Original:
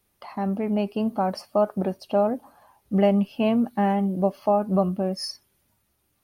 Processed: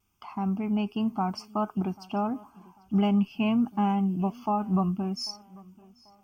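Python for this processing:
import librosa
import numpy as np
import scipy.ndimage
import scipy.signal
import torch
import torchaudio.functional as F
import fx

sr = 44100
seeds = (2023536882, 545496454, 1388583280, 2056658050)

y = fx.fixed_phaser(x, sr, hz=2700.0, stages=8)
y = fx.echo_tape(y, sr, ms=791, feedback_pct=40, wet_db=-22, lp_hz=4800.0, drive_db=16.0, wow_cents=28)
y = fx.vibrato(y, sr, rate_hz=1.4, depth_cents=30.0)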